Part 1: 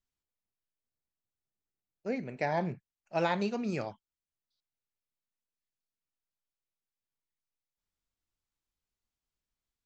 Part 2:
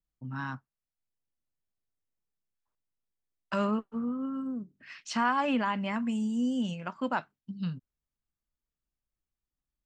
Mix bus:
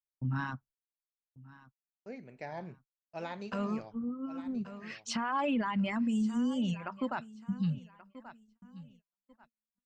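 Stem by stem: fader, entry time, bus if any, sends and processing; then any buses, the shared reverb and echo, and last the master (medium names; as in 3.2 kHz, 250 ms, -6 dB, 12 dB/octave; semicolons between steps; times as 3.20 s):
-11.0 dB, 0.00 s, no send, echo send -12 dB, none
+1.5 dB, 0.00 s, no send, echo send -21.5 dB, bass shelf 150 Hz +12 dB; reverb removal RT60 1.8 s; auto duck -7 dB, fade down 1.90 s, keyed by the first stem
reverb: none
echo: feedback delay 1131 ms, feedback 29%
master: gate -59 dBFS, range -37 dB; peak limiter -24.5 dBFS, peak gain reduction 10 dB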